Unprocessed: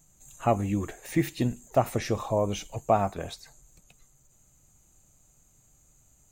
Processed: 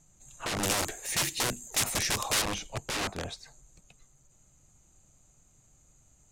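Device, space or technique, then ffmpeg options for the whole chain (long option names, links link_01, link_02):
overflowing digital effects unit: -filter_complex "[0:a]aeval=exprs='(mod(20*val(0)+1,2)-1)/20':channel_layout=same,lowpass=8500,asettb=1/sr,asplit=3[link_01][link_02][link_03];[link_01]atrim=end=0.634[link_04];[link_02]atrim=start=0.63:end=2.42,asetpts=PTS-STARTPTS,afade=type=in:duration=0.004:curve=qsin,afade=type=out:start_time=1.786:duration=0.004:curve=qsin,aemphasis=mode=production:type=75kf[link_05];[link_03]atrim=start=2.416[link_06];[link_04][link_05]acrossfade=duration=0.004:curve1=hsin:curve2=qsin[link_07];[link_07][link_06]acrossfade=duration=0.004:curve1=qsin:curve2=hsin"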